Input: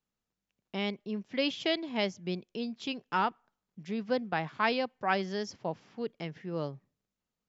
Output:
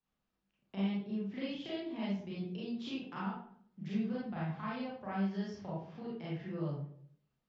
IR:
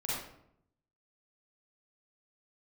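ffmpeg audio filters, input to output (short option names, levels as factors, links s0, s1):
-filter_complex "[0:a]lowpass=4300,acrossover=split=180[s0][s1];[s1]acompressor=threshold=0.00631:ratio=6[s2];[s0][s2]amix=inputs=2:normalize=0[s3];[1:a]atrim=start_sample=2205,asetrate=57330,aresample=44100[s4];[s3][s4]afir=irnorm=-1:irlink=0,volume=1.12"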